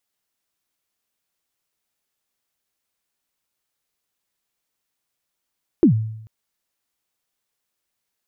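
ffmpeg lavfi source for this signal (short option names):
-f lavfi -i "aevalsrc='0.447*pow(10,-3*t/0.78)*sin(2*PI*(380*0.102/log(110/380)*(exp(log(110/380)*min(t,0.102)/0.102)-1)+110*max(t-0.102,0)))':d=0.44:s=44100"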